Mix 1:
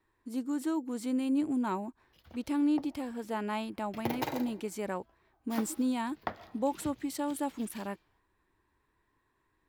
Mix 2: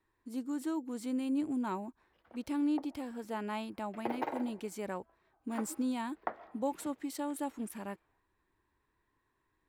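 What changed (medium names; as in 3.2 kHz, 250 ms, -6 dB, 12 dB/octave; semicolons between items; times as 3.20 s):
speech -3.5 dB; background: add three-band isolator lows -21 dB, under 270 Hz, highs -21 dB, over 2.1 kHz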